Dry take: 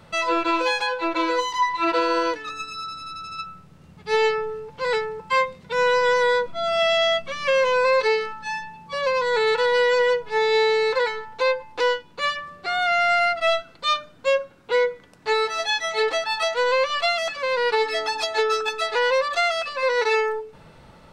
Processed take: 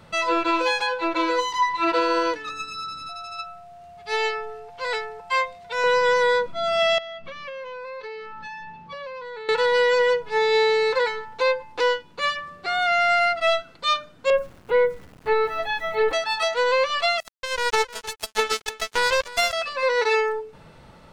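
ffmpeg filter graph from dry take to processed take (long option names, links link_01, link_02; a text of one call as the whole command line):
ffmpeg -i in.wav -filter_complex "[0:a]asettb=1/sr,asplit=3[link_01][link_02][link_03];[link_01]atrim=end=3.094[link_04];[link_02]atrim=start=3.09:end=5.84,asetpts=PTS-STARTPTS,afade=type=in:duration=0.004:curve=qsin,afade=type=out:start_time=2.746:duration=0.004:curve=qsin,equalizer=frequency=190:width=0.5:gain=-13.5,aeval=exprs='val(0)+0.00794*sin(2*PI*700*n/s)':channel_layout=same[link_05];[link_03]atrim=start=5.836[link_06];[link_04][link_05]acrossfade=duration=0.004:curve1=hsin:curve2=qsin[link_07];[link_07][link_06]acrossfade=duration=0.004:curve1=qsin:curve2=hsin,asettb=1/sr,asplit=3[link_08][link_09][link_10];[link_08]atrim=end=6.984[link_11];[link_09]atrim=start=6.98:end=9.49,asetpts=PTS-STARTPTS,afade=type=in:duration=0.004:curve=qsin,afade=type=out:start_time=2.506:duration=0.004:curve=qsin,acompressor=threshold=-32dB:ratio=10:attack=3.2:release=140:knee=1:detection=peak,lowpass=3900[link_12];[link_10]atrim=start=9.486[link_13];[link_11][link_12]acrossfade=duration=0.004:curve1=hsin:curve2=qsin[link_14];[link_14][link_13]acrossfade=duration=0.004:curve1=qsin:curve2=hsin,asettb=1/sr,asplit=3[link_15][link_16][link_17];[link_15]atrim=end=14.304[link_18];[link_16]atrim=start=14.3:end=16.13,asetpts=PTS-STARTPTS,afade=type=in:duration=0.004:curve=qsin,afade=type=out:start_time=1.826:duration=0.004:curve=qsin,lowpass=2800,aemphasis=mode=reproduction:type=bsi,aeval=exprs='val(0)*gte(abs(val(0)),0.00501)':channel_layout=same[link_19];[link_17]atrim=start=16.126[link_20];[link_18][link_19]acrossfade=duration=0.004:curve1=hsin:curve2=qsin[link_21];[link_21][link_20]acrossfade=duration=0.004:curve1=qsin:curve2=hsin,asettb=1/sr,asplit=3[link_22][link_23][link_24];[link_22]atrim=end=17.204[link_25];[link_23]atrim=start=17.2:end=19.53,asetpts=PTS-STARTPTS,afade=type=in:duration=0.004:curve=qsin,afade=type=out:start_time=2.326:duration=0.004:curve=qsin,acrusher=bits=2:mix=0:aa=0.5,aecho=1:1:308:0.141,atrim=end_sample=102753[link_26];[link_24]atrim=start=19.526[link_27];[link_25][link_26]acrossfade=duration=0.004:curve1=hsin:curve2=qsin[link_28];[link_28][link_27]acrossfade=duration=0.004:curve1=qsin:curve2=hsin" out.wav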